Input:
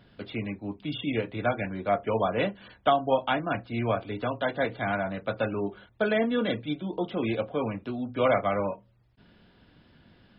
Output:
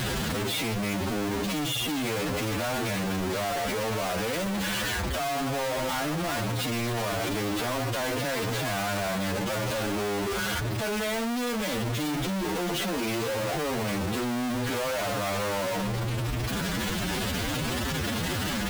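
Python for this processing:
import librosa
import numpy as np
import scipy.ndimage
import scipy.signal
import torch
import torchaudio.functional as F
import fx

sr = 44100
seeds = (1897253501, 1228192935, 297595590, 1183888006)

y = np.sign(x) * np.sqrt(np.mean(np.square(x)))
y = fx.stretch_vocoder(y, sr, factor=1.8)
y = y * 10.0 ** (1.0 / 20.0)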